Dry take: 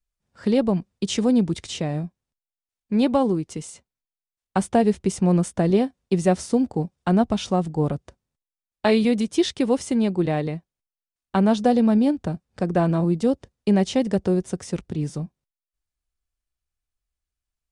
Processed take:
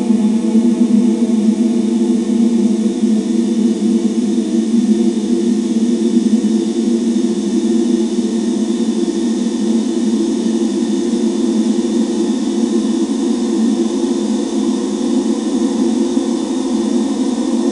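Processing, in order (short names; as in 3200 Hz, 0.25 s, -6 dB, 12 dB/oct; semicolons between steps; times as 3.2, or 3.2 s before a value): low-pass opened by the level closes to 830 Hz, open at -17 dBFS; ten-band EQ 125 Hz -9 dB, 250 Hz +10 dB, 500 Hz -7 dB, 1000 Hz +7 dB, 2000 Hz -5 dB, 4000 Hz -11 dB, 8000 Hz +4 dB; split-band echo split 490 Hz, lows 0.29 s, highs 0.745 s, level -14.5 dB; limiter -15.5 dBFS, peak gain reduction 10 dB; Paulstretch 49×, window 1.00 s, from 9.2; harmonic-percussive split harmonic +6 dB; gain +3.5 dB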